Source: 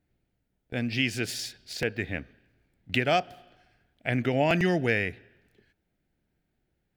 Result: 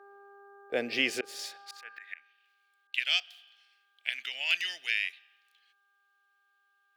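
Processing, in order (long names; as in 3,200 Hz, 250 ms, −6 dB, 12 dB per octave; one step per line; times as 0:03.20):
0:01.13–0:02.98: volume swells 360 ms
hum with harmonics 400 Hz, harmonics 4, −57 dBFS −1 dB per octave
high-pass filter sweep 460 Hz → 3,100 Hz, 0:01.35–0:02.37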